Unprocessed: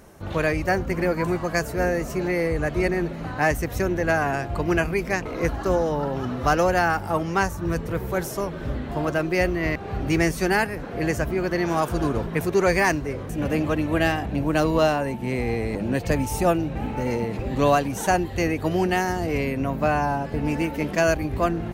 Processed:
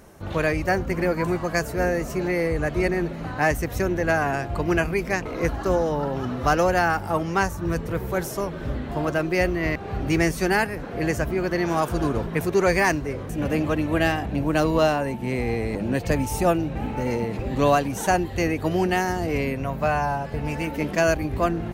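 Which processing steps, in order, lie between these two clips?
19.56–20.67 s: peaking EQ 290 Hz -8 dB 0.7 oct

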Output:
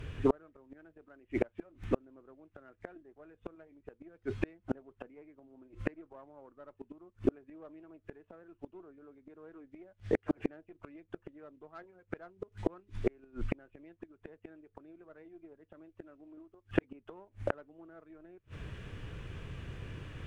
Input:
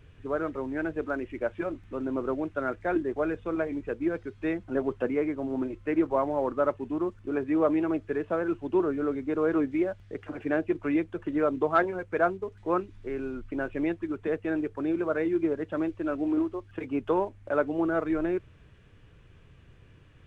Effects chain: Chebyshev shaper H 2 -25 dB, 4 -20 dB, 6 -36 dB, 8 -37 dB, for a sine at -11 dBFS; inverted gate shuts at -26 dBFS, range -38 dB; trim +11 dB

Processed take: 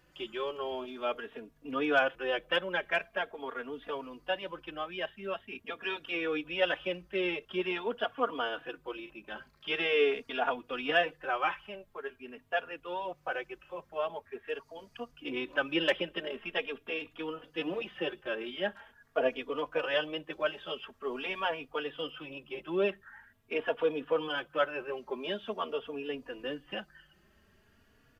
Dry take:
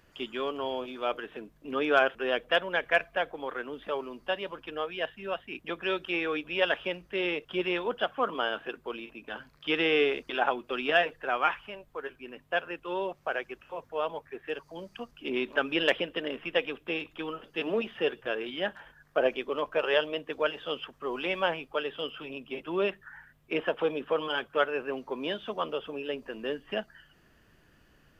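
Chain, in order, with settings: endless flanger 3.5 ms +0.45 Hz

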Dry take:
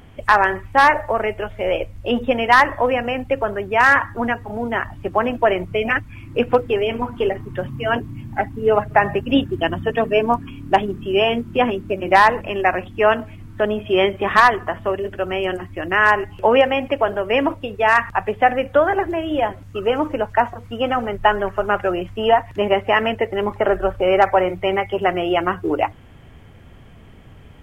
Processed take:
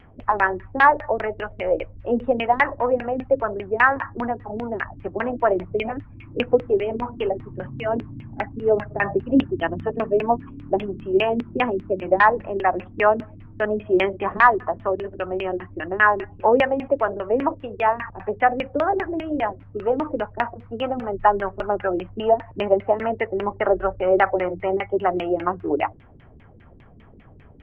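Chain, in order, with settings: LFO low-pass saw down 5 Hz 240–2800 Hz; vibrato 0.97 Hz 16 cents; trim -5.5 dB

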